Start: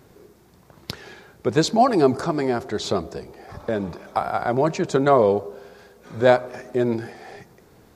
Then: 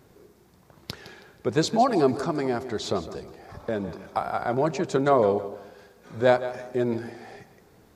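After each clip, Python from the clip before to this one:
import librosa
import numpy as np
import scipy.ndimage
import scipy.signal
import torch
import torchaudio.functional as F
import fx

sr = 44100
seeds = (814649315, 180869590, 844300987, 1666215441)

y = fx.echo_feedback(x, sr, ms=161, feedback_pct=32, wet_db=-14)
y = y * librosa.db_to_amplitude(-4.0)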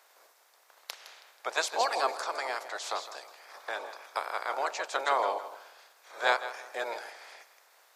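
y = fx.spec_clip(x, sr, under_db=19)
y = scipy.signal.sosfilt(scipy.signal.butter(4, 530.0, 'highpass', fs=sr, output='sos'), y)
y = y * librosa.db_to_amplitude(-5.0)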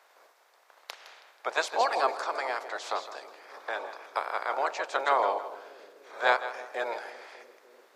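y = fx.high_shelf(x, sr, hz=4600.0, db=-11.5)
y = fx.echo_bbd(y, sr, ms=297, stages=1024, feedback_pct=81, wet_db=-16.0)
y = y * librosa.db_to_amplitude(3.0)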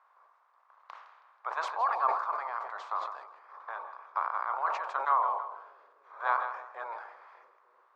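y = fx.bandpass_q(x, sr, hz=1100.0, q=5.0)
y = fx.sustainer(y, sr, db_per_s=63.0)
y = y * librosa.db_to_amplitude(3.5)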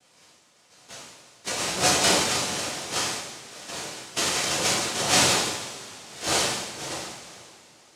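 y = fx.lpc_vocoder(x, sr, seeds[0], excitation='pitch_kept', order=10)
y = fx.noise_vocoder(y, sr, seeds[1], bands=2)
y = fx.rev_double_slope(y, sr, seeds[2], early_s=0.66, late_s=3.5, knee_db=-18, drr_db=-6.0)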